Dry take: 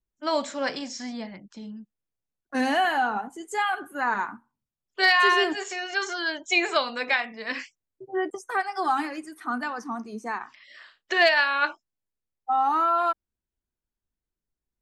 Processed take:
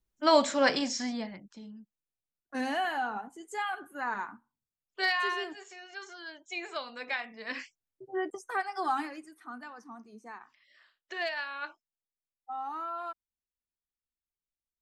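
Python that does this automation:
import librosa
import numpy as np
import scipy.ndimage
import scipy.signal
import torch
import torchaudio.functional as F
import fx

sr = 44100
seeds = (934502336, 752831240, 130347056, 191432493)

y = fx.gain(x, sr, db=fx.line((0.9, 3.5), (1.69, -8.0), (5.02, -8.0), (5.61, -16.0), (6.51, -16.0), (7.58, -5.5), (8.96, -5.5), (9.53, -14.5)))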